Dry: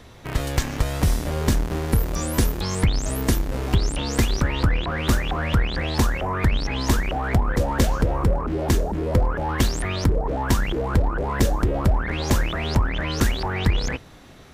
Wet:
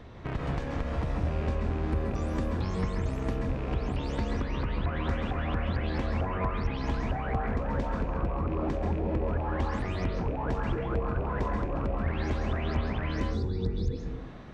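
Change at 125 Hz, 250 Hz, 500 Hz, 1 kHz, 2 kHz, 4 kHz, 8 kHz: −7.5 dB, −7.0 dB, −6.5 dB, −7.0 dB, −10.0 dB, −15.5 dB, below −25 dB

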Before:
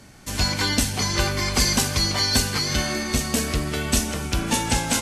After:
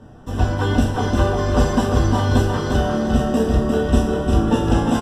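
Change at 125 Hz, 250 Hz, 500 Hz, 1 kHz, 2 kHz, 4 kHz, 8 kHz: +7.5, +8.0, +10.0, +5.0, −2.5, −10.0, −13.5 decibels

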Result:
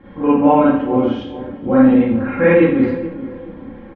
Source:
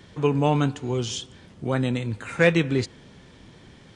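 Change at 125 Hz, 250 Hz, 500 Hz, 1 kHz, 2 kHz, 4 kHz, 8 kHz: −0.5 dB, +13.5 dB, +9.5 dB, +11.0 dB, +3.5 dB, can't be measured, below −25 dB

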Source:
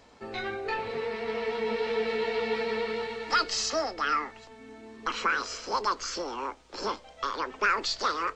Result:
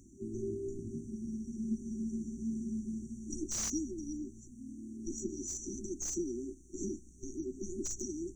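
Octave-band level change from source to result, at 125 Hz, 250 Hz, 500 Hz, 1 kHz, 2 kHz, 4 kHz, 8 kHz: +4.5, +4.5, −12.0, −36.0, −32.0, −20.5, +1.0 decibels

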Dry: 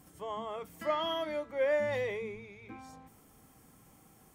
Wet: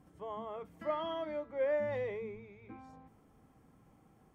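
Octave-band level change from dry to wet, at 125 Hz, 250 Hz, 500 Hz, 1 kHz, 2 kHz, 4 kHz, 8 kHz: −2.0 dB, −2.0 dB, −3.0 dB, −4.5 dB, −7.5 dB, −11.0 dB, can't be measured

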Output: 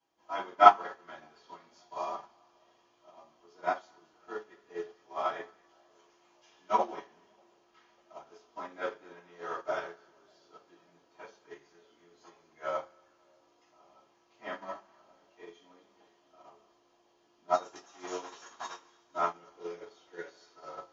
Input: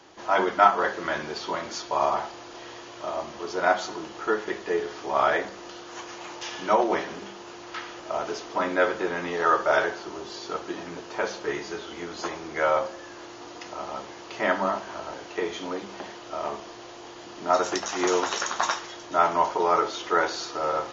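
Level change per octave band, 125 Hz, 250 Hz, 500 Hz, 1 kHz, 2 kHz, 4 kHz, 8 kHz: −17.0 dB, −16.5 dB, −11.0 dB, −6.5 dB, −14.5 dB, −14.5 dB, can't be measured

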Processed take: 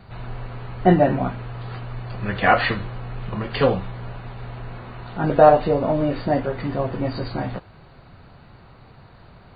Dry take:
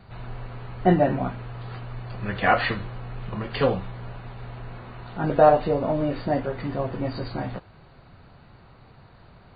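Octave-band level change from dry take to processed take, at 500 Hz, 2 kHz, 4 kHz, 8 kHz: +3.5 dB, +3.5 dB, +3.5 dB, can't be measured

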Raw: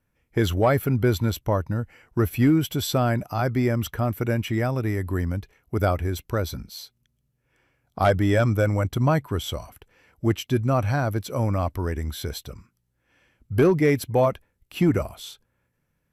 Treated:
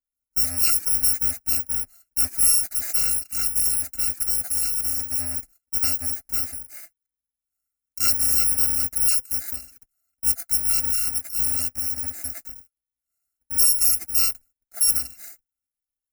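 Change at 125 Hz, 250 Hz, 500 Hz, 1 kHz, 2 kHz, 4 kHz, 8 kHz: −20.5, −21.0, −26.0, −16.0, −8.0, +6.5, +19.5 decibels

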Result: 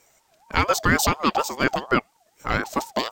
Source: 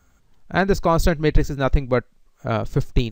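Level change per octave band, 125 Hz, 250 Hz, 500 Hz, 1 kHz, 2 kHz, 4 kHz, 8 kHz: −8.5, −3.0, −5.5, +2.5, +4.0, +5.5, +9.0 decibels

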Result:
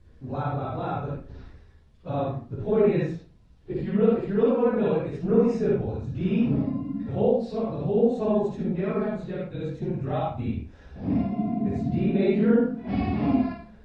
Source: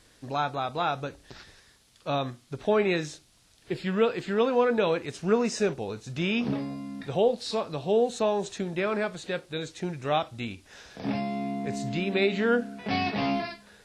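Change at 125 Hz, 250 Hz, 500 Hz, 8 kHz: +7.5 dB, +6.0 dB, +2.0 dB, below −15 dB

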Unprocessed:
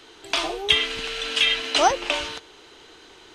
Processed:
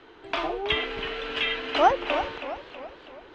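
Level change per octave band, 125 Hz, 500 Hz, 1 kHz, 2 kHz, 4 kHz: +0.5, +0.5, 0.0, −4.0, −9.5 decibels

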